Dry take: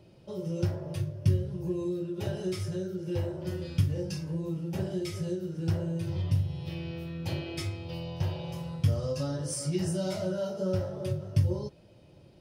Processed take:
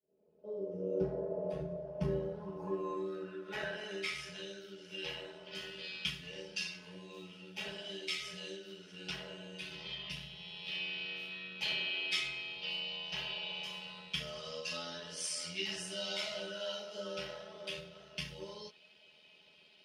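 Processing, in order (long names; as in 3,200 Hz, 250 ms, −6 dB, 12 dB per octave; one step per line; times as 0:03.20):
fade in at the beginning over 1.35 s
time stretch by overlap-add 1.6×, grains 25 ms
band-pass filter sweep 470 Hz → 2,900 Hz, 0:01.20–0:04.48
level +12.5 dB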